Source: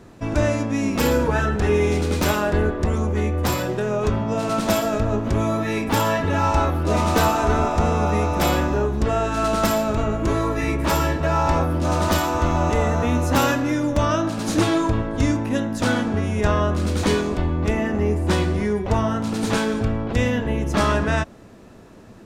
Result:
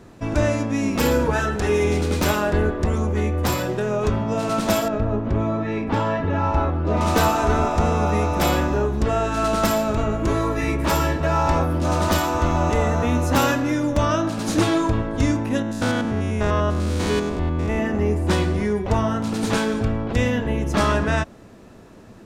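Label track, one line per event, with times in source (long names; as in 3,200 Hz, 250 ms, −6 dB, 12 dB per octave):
1.330000	1.840000	bass and treble bass −4 dB, treble +5 dB
4.880000	7.010000	head-to-tape spacing loss at 10 kHz 25 dB
15.620000	17.790000	spectrum averaged block by block every 100 ms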